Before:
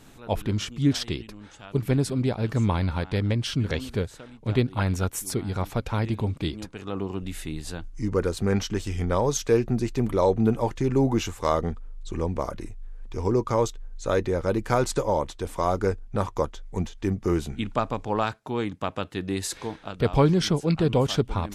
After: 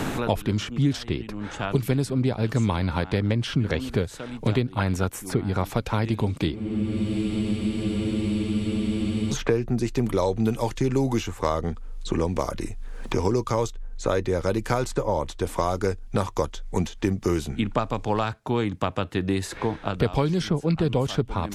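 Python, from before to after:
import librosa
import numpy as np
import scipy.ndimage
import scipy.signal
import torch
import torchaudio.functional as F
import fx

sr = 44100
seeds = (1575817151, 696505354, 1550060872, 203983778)

y = fx.spec_freeze(x, sr, seeds[0], at_s=6.58, hold_s=2.75)
y = fx.band_squash(y, sr, depth_pct=100)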